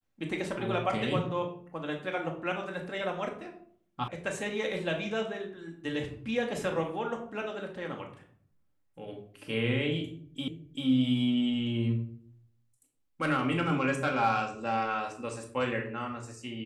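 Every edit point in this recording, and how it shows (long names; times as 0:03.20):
0:04.08: cut off before it has died away
0:10.48: the same again, the last 0.39 s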